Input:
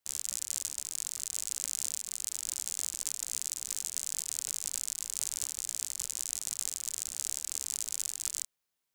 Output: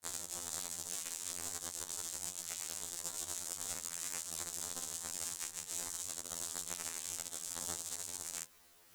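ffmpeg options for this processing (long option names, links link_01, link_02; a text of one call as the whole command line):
ffmpeg -i in.wav -filter_complex "[0:a]alimiter=limit=-20dB:level=0:latency=1:release=51,areverse,acompressor=mode=upward:threshold=-47dB:ratio=2.5,areverse,aeval=exprs='val(0)*sin(2*PI*120*n/s)':channel_layout=same,asplit=3[link_01][link_02][link_03];[link_02]asetrate=22050,aresample=44100,atempo=2,volume=-16dB[link_04];[link_03]asetrate=55563,aresample=44100,atempo=0.793701,volume=-16dB[link_05];[link_01][link_04][link_05]amix=inputs=3:normalize=0,asplit=2[link_06][link_07];[link_07]acrusher=samples=13:mix=1:aa=0.000001:lfo=1:lforange=7.8:lforate=0.68,volume=-10.5dB[link_08];[link_06][link_08]amix=inputs=2:normalize=0,afftfilt=real='re*2*eq(mod(b,4),0)':imag='im*2*eq(mod(b,4),0)':win_size=2048:overlap=0.75,volume=5dB" out.wav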